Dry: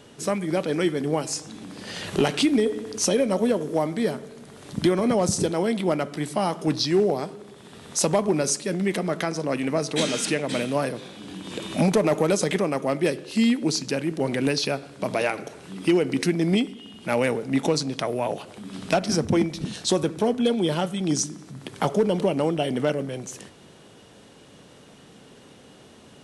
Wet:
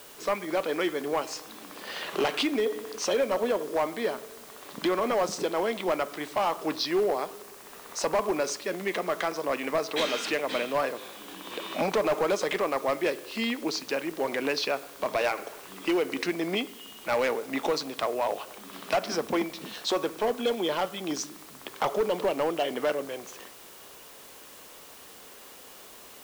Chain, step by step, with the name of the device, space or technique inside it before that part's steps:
drive-through speaker (band-pass filter 450–4,000 Hz; parametric band 1,100 Hz +5.5 dB 0.34 octaves; hard clipping −20 dBFS, distortion −14 dB; white noise bed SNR 20 dB)
0:07.42–0:08.21: parametric band 3,400 Hz −6 dB 0.4 octaves

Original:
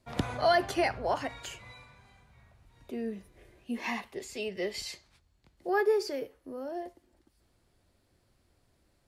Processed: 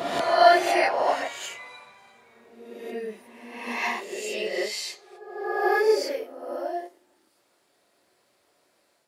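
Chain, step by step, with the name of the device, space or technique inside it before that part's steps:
ghost voice (reversed playback; convolution reverb RT60 1.1 s, pre-delay 9 ms, DRR −5.5 dB; reversed playback; high-pass filter 440 Hz 12 dB per octave)
level +2 dB

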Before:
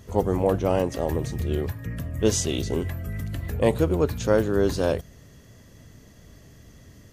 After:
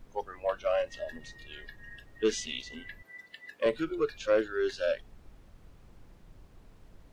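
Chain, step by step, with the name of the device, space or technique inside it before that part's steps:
noise reduction from a noise print of the clip's start 25 dB
aircraft cabin announcement (band-pass filter 360–3,500 Hz; soft clipping −16.5 dBFS, distortion −17 dB; brown noise bed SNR 17 dB)
0:03.02–0:03.66: Bessel high-pass filter 370 Hz, order 2

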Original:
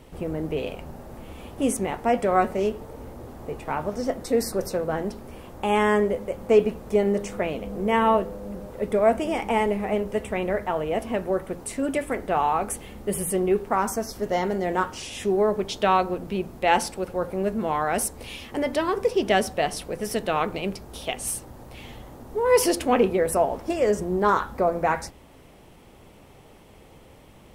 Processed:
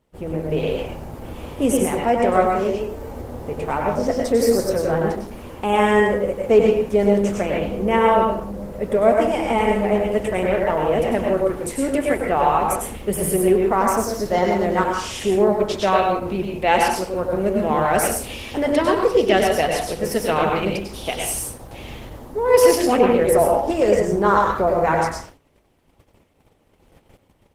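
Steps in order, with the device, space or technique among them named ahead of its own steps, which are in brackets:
speakerphone in a meeting room (convolution reverb RT60 0.50 s, pre-delay 93 ms, DRR 0 dB; automatic gain control gain up to 4.5 dB; noise gate −39 dBFS, range −18 dB; Opus 16 kbit/s 48,000 Hz)

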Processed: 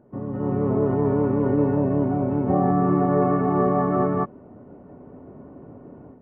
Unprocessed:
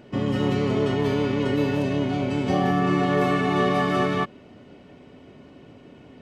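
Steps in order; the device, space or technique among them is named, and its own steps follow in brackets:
action camera in a waterproof case (low-pass filter 1,200 Hz 24 dB per octave; automatic gain control gain up to 11.5 dB; level −7 dB; AAC 64 kbit/s 16,000 Hz)

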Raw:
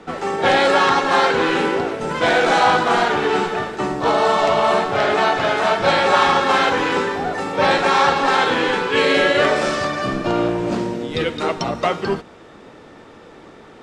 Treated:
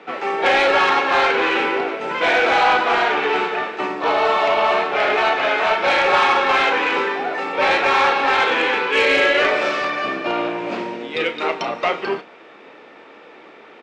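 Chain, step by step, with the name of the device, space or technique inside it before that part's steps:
intercom (band-pass filter 350–4,000 Hz; parametric band 2,400 Hz +8 dB 0.51 octaves; soft clipping −8 dBFS, distortion −19 dB; double-tracking delay 33 ms −11 dB)

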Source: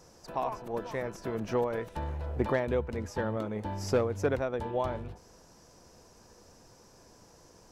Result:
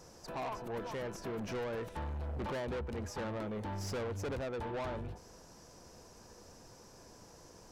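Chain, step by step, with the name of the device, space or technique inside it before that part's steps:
saturation between pre-emphasis and de-emphasis (high-shelf EQ 7,900 Hz +6.5 dB; soft clipping −36.5 dBFS, distortion −5 dB; high-shelf EQ 7,900 Hz −6.5 dB)
level +1 dB

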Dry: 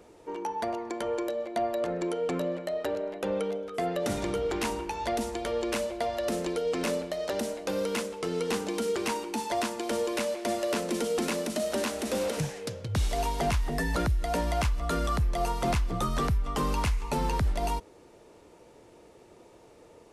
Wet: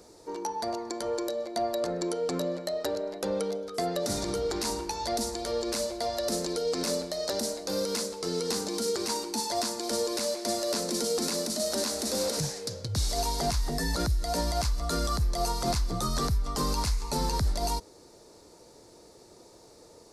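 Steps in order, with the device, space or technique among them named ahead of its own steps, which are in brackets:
over-bright horn tweeter (high shelf with overshoot 3,600 Hz +7 dB, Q 3; brickwall limiter −19 dBFS, peak gain reduction 7.5 dB)

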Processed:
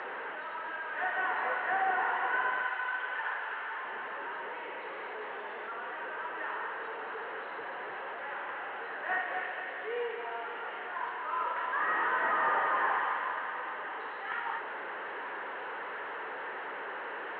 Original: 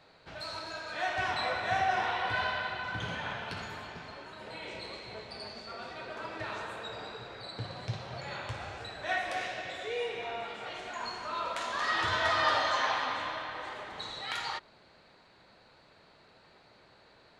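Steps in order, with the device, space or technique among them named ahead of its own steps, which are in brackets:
digital answering machine (band-pass filter 380–3,300 Hz; linear delta modulator 16 kbit/s, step −34 dBFS; loudspeaker in its box 400–4,400 Hz, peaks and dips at 430 Hz +4 dB, 650 Hz −7 dB, 940 Hz +3 dB, 1,700 Hz +5 dB, 2,400 Hz −9 dB, 3,500 Hz −10 dB)
0:02.65–0:03.85: meter weighting curve A
level +1.5 dB

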